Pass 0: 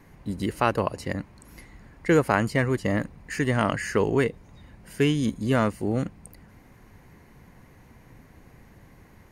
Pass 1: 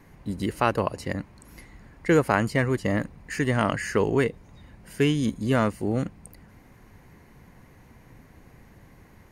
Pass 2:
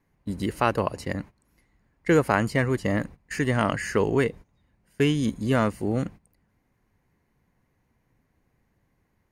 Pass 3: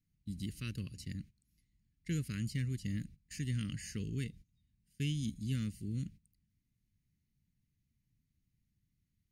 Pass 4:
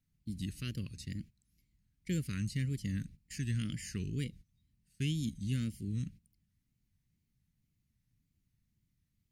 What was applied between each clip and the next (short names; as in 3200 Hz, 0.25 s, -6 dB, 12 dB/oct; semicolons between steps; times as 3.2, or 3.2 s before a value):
nothing audible
gate -39 dBFS, range -18 dB
Chebyshev band-stop 170–3600 Hz, order 2; gain -8 dB
wow and flutter 120 cents; gain +1.5 dB